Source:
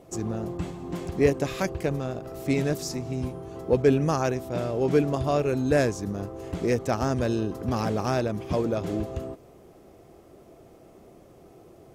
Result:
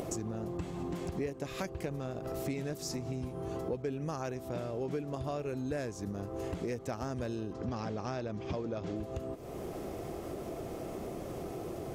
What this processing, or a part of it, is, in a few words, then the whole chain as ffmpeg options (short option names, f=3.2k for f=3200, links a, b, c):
upward and downward compression: -filter_complex "[0:a]acompressor=mode=upward:threshold=-28dB:ratio=2.5,acompressor=threshold=-34dB:ratio=6,asettb=1/sr,asplit=3[a][b][c];[a]atrim=end=7.534[d];[b]atrim=start=7.53:end=8.96,asetpts=PTS-STARTPTS,afade=t=in:d=0.004:c=qsin,afade=t=out:st=1.426:d=0.004:c=qsin,lowpass=f=6.6k:w=0.5412,lowpass=f=6.6k:w=1.3066[e];[c]atrim=start=8.956[f];[d][e]acrossfade=d=0.004:c1=hsin:c2=qsin[g];[g][f]acrossfade=d=0.004:c1=qsin:c2=hsin"